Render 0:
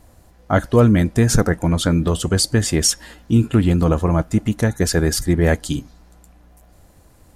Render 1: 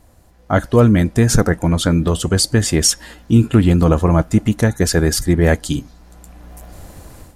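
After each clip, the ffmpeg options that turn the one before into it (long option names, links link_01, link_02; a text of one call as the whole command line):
ffmpeg -i in.wav -af "dynaudnorm=framelen=300:gausssize=3:maxgain=14dB,volume=-1dB" out.wav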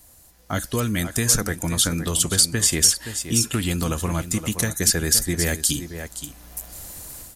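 ffmpeg -i in.wav -filter_complex "[0:a]aecho=1:1:520:0.211,acrossover=split=450|1200|2900[link_01][link_02][link_03][link_04];[link_01]acompressor=threshold=-14dB:ratio=4[link_05];[link_02]acompressor=threshold=-30dB:ratio=4[link_06];[link_03]acompressor=threshold=-27dB:ratio=4[link_07];[link_04]acompressor=threshold=-25dB:ratio=4[link_08];[link_05][link_06][link_07][link_08]amix=inputs=4:normalize=0,crystalizer=i=6.5:c=0,volume=-8dB" out.wav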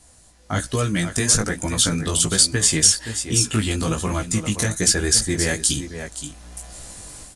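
ffmpeg -i in.wav -af "aresample=22050,aresample=44100,flanger=delay=15:depth=5.2:speed=1.2,volume=5dB" -ar 48000 -c:a sbc -b:a 128k out.sbc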